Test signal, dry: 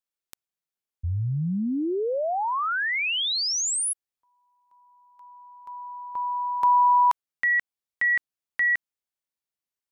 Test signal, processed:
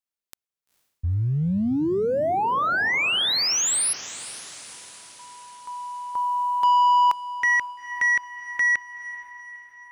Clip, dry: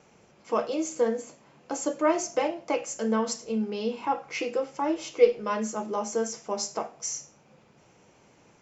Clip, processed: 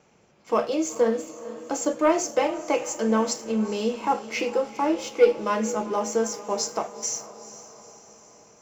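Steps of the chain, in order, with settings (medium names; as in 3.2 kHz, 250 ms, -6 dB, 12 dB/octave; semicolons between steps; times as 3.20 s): waveshaping leveller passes 1; echo that smears into a reverb 461 ms, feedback 56%, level -15 dB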